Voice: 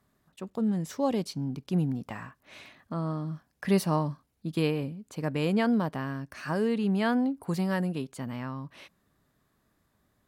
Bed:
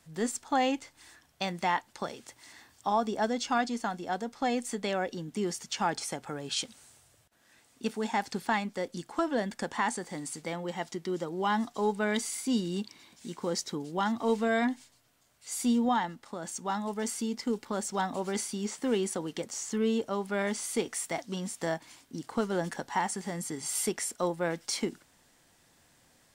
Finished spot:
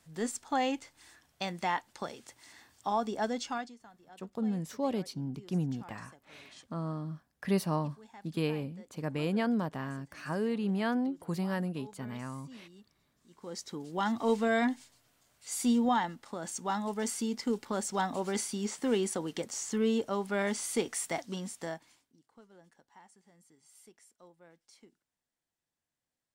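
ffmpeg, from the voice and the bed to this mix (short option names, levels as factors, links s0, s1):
-filter_complex "[0:a]adelay=3800,volume=0.596[s0];[1:a]volume=8.91,afade=t=out:st=3.36:d=0.4:silence=0.105925,afade=t=in:st=13.28:d=0.88:silence=0.0794328,afade=t=out:st=21.12:d=1.04:silence=0.0446684[s1];[s0][s1]amix=inputs=2:normalize=0"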